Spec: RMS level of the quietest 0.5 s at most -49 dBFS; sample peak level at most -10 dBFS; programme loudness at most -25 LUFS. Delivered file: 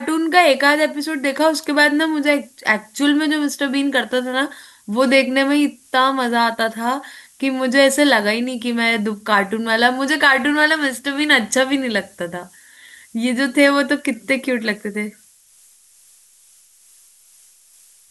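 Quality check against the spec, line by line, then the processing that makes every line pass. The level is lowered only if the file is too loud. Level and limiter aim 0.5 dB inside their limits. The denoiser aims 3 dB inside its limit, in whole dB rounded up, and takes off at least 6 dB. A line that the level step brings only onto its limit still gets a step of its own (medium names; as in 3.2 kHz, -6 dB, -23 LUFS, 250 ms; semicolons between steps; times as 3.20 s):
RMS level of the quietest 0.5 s -51 dBFS: pass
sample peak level -1.5 dBFS: fail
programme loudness -17.0 LUFS: fail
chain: trim -8.5 dB; peak limiter -10.5 dBFS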